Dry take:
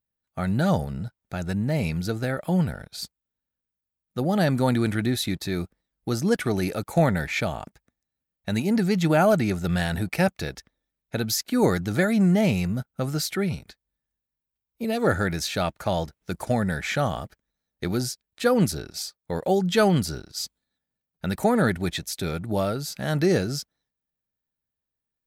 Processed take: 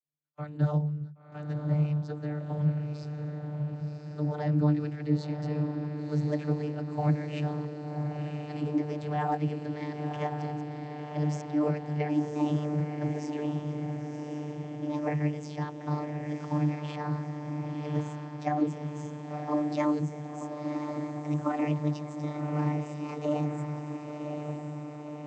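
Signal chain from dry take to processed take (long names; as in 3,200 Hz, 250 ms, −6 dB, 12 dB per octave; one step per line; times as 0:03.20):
pitch glide at a constant tempo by +8 semitones starting unshifted
feedback delay with all-pass diffusion 1,049 ms, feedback 64%, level −5.5 dB
channel vocoder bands 32, saw 149 Hz
level −5 dB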